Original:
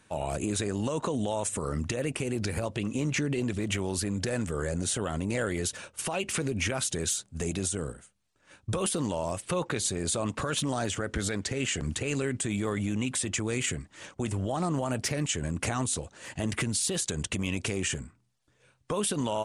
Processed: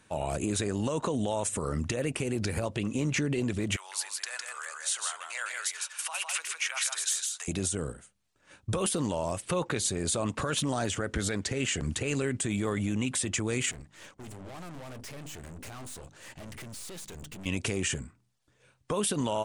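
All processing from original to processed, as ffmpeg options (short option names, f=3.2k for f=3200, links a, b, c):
-filter_complex "[0:a]asettb=1/sr,asplit=3[a][b][c];[a]atrim=end=3.764[d];[b]atrim=start=3.76:end=7.48,asetpts=PTS-STARTPTS,afade=t=in:d=0.004:c=qsin,afade=t=out:st=3.716:d=0.004:c=qsin,highpass=f=980:w=0.5412,highpass=f=980:w=1.3066,aecho=1:1:157:0.668,atrim=end_sample=164052[e];[c]atrim=start=7.476[f];[d][e]acrossfade=d=0.004:c1=hsin:c2=qsin[g];[g][f]acrossfade=d=0.004:c1=qsin:c2=hsin,asettb=1/sr,asplit=3[h][i][j];[h]atrim=end=13.714[k];[i]atrim=start=13.71:end=17.46,asetpts=PTS-STARTPTS,afade=t=in:d=0.004:c=qsin,afade=t=out:st=3.746:d=0.004:c=qsin,bandreject=f=50:t=h:w=6,bandreject=f=100:t=h:w=6,bandreject=f=150:t=h:w=6,bandreject=f=200:t=h:w=6,bandreject=f=250:t=h:w=6,bandreject=f=300:t=h:w=6,aeval=exprs='(tanh(126*val(0)+0.65)-tanh(0.65))/126':c=same[l];[j]atrim=start=17.456[m];[k][l]acrossfade=d=0.004:c1=hsin:c2=qsin[n];[n][m]acrossfade=d=0.004:c1=qsin:c2=hsin"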